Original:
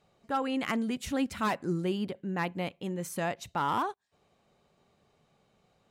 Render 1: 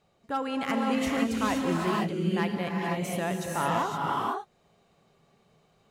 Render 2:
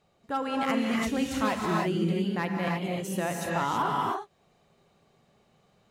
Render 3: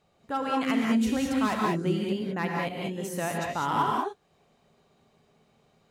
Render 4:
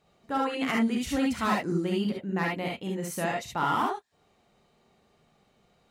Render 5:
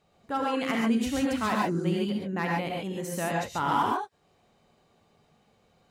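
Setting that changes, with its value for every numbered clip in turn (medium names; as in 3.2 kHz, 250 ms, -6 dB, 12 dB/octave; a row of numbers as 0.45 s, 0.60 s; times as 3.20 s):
gated-style reverb, gate: 540 ms, 350 ms, 230 ms, 90 ms, 160 ms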